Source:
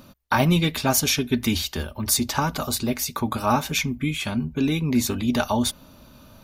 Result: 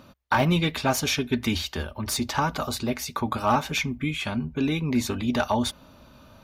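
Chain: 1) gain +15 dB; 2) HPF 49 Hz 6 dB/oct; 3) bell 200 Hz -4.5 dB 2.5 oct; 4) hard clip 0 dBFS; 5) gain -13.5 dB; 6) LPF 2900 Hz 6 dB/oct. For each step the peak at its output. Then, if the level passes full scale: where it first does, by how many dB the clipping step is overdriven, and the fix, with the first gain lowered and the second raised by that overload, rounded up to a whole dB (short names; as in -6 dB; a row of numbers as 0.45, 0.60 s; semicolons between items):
+9.0, +9.0, +8.0, 0.0, -13.5, -13.5 dBFS; step 1, 8.0 dB; step 1 +7 dB, step 5 -5.5 dB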